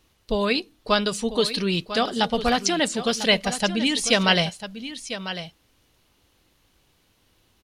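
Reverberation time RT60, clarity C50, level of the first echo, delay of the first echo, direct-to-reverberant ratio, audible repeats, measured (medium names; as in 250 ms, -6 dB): no reverb, no reverb, -12.0 dB, 997 ms, no reverb, 1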